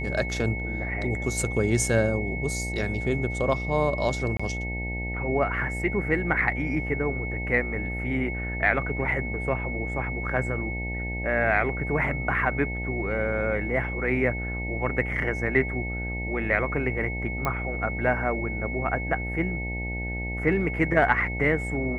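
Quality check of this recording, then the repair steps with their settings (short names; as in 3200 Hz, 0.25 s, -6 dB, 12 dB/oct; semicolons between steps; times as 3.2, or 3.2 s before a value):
buzz 60 Hz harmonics 15 -32 dBFS
tone 2200 Hz -33 dBFS
4.37–4.39 gap 25 ms
17.45 pop -13 dBFS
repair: de-click; notch 2200 Hz, Q 30; de-hum 60 Hz, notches 15; interpolate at 4.37, 25 ms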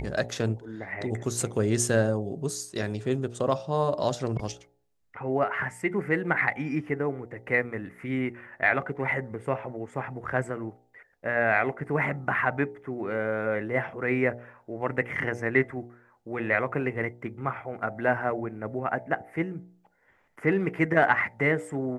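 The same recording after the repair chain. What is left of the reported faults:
none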